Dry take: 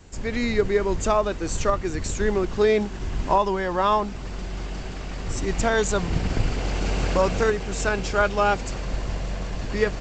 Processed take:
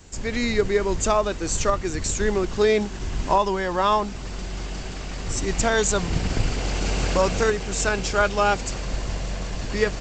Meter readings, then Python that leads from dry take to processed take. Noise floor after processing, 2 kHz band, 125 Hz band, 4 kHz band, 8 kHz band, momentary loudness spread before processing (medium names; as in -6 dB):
-33 dBFS, +1.0 dB, 0.0 dB, +4.0 dB, +6.5 dB, 11 LU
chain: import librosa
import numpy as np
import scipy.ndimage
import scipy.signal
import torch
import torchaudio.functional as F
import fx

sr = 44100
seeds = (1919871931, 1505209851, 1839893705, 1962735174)

y = fx.high_shelf(x, sr, hz=4200.0, db=8.5)